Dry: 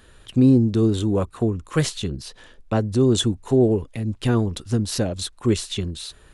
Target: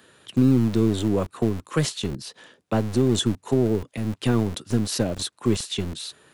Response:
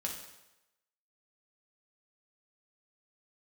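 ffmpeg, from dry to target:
-filter_complex "[0:a]acrossover=split=180[a][b];[b]acompressor=threshold=-19dB:ratio=6[c];[a][c]amix=inputs=2:normalize=0,acrossover=split=120|3200[d][e][f];[d]acrusher=bits=3:dc=4:mix=0:aa=0.000001[g];[g][e][f]amix=inputs=3:normalize=0"

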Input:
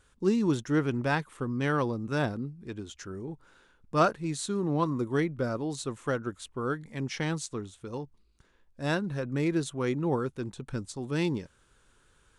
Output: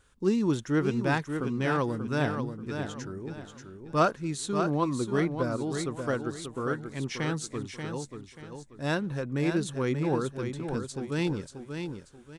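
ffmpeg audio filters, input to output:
-af "aecho=1:1:585|1170|1755|2340:0.447|0.143|0.0457|0.0146"

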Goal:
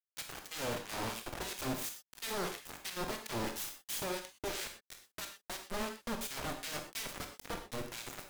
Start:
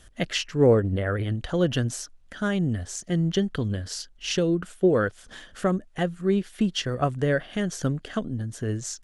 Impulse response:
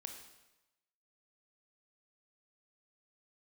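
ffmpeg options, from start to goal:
-filter_complex "[0:a]adynamicequalizer=threshold=0.00398:dfrequency=6300:dqfactor=0.86:tfrequency=6300:tqfactor=0.86:attack=5:release=100:ratio=0.375:range=3.5:mode=boostabove:tftype=bell,aeval=exprs='0.376*(cos(1*acos(clip(val(0)/0.376,-1,1)))-cos(1*PI/2))+0.0106*(cos(5*acos(clip(val(0)/0.376,-1,1)))-cos(5*PI/2))+0.133*(cos(6*acos(clip(val(0)/0.376,-1,1)))-cos(6*PI/2))+0.0473*(cos(7*acos(clip(val(0)/0.376,-1,1)))-cos(7*PI/2))':c=same,acompressor=threshold=-21dB:ratio=3,asoftclip=type=hard:threshold=-22dB,acompressor=mode=upward:threshold=-39dB:ratio=2.5,aeval=exprs='0.0224*(abs(mod(val(0)/0.0224+3,4)-2)-1)':c=same,acrossover=split=1500[a][b];[a]aeval=exprs='val(0)*(1-1/2+1/2*cos(2*PI*2.7*n/s))':c=same[c];[b]aeval=exprs='val(0)*(1-1/2-1/2*cos(2*PI*2.7*n/s))':c=same[d];[c][d]amix=inputs=2:normalize=0,acrusher=bits=6:mix=0:aa=0.000001[e];[1:a]atrim=start_sample=2205,afade=t=out:st=0.19:d=0.01,atrim=end_sample=8820[f];[e][f]afir=irnorm=-1:irlink=0,asetrate=48000,aresample=44100,volume=8dB"

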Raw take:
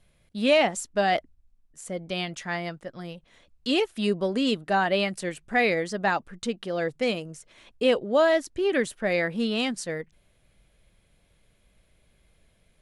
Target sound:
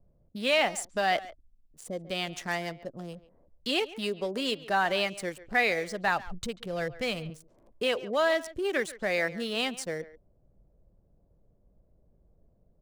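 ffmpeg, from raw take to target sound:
-filter_complex "[0:a]asettb=1/sr,asplit=3[a][b][c];[a]atrim=end=2.274[d];[b]atrim=start=2.27:end=2.73,asetpts=PTS-STARTPTS,afade=t=in:d=0.004:c=qsin,afade=t=out:st=0.456:d=0.004:c=qsin,aeval=exprs='0.133*(cos(1*acos(clip(val(0)/0.133,-1,1)))-cos(1*PI/2))+0.00596*(cos(5*acos(clip(val(0)/0.133,-1,1)))-cos(5*PI/2))+0.015*(cos(6*acos(clip(val(0)/0.133,-1,1)))-cos(6*PI/2))+0.0119*(cos(8*acos(clip(val(0)/0.133,-1,1)))-cos(8*PI/2))':c=same[e];[c]atrim=start=2.726[f];[d][e]acrossfade=d=0.004:c1=hsin:c2=qsin[g];[g][f]acrossfade=d=0.004:c1=qsin:c2=hsin,acrossover=split=440|810[h][i][j];[h]acompressor=threshold=-38dB:ratio=6[k];[i]alimiter=level_in=3.5dB:limit=-24dB:level=0:latency=1,volume=-3.5dB[l];[j]aeval=exprs='sgn(val(0))*max(abs(val(0))-0.00562,0)':c=same[m];[k][l][m]amix=inputs=3:normalize=0,asettb=1/sr,asplit=3[n][o][p];[n]atrim=end=5.444[q];[o]atrim=start=5.44:end=7.3,asetpts=PTS-STARTPTS,afade=t=in:d=0.004:c=qsin,afade=t=out:st=1.856:d=0.004:c=qsin,asubboost=boost=12:cutoff=130[r];[p]atrim=start=7.296[s];[q][r]acrossfade=d=0.004:c1=hsin:c2=qsin[t];[t][s]acrossfade=d=0.004:c1=qsin:c2=hsin,asplit=2[u][v];[v]adelay=140,highpass=300,lowpass=3.4k,asoftclip=type=hard:threshold=-23.5dB,volume=-16dB[w];[u][w]amix=inputs=2:normalize=0"

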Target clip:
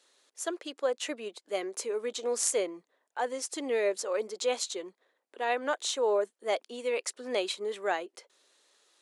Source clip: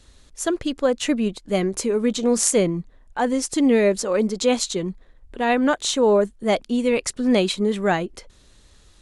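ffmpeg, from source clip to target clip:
-af "highpass=f=390:w=0.5412,highpass=f=390:w=1.3066,volume=-8.5dB"

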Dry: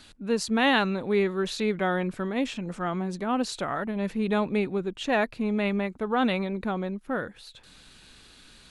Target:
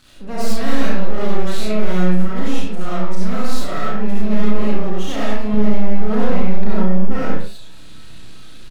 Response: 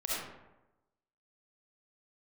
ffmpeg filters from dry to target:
-filter_complex "[0:a]aeval=exprs='clip(val(0),-1,0.0447)':c=same,asetnsamples=n=441:p=0,asendcmd='5.54 equalizer g 12.5',equalizer=f=110:w=0.47:g=6,aeval=exprs='max(val(0),0)':c=same,asplit=2[a][b];[b]adelay=33,volume=-4.5dB[c];[a][c]amix=inputs=2:normalize=0[d];[1:a]atrim=start_sample=2205,afade=t=out:st=0.27:d=0.01,atrim=end_sample=12348[e];[d][e]afir=irnorm=-1:irlink=0,alimiter=level_in=5dB:limit=-1dB:release=50:level=0:latency=1,volume=-1dB"

